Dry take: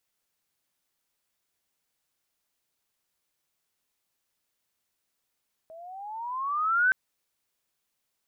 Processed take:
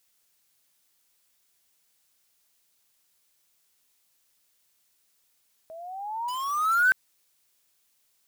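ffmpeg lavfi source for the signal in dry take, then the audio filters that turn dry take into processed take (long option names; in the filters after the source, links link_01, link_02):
-f lavfi -i "aevalsrc='pow(10,(-18+25*(t/1.22-1))/20)*sin(2*PI*635*1.22/(15.5*log(2)/12)*(exp(15.5*log(2)/12*t/1.22)-1))':duration=1.22:sample_rate=44100"
-filter_complex "[0:a]highshelf=frequency=2600:gain=8.5,asplit=2[link_01][link_02];[link_02]aeval=exprs='(mod(31.6*val(0)+1,2)-1)/31.6':channel_layout=same,volume=-7dB[link_03];[link_01][link_03]amix=inputs=2:normalize=0"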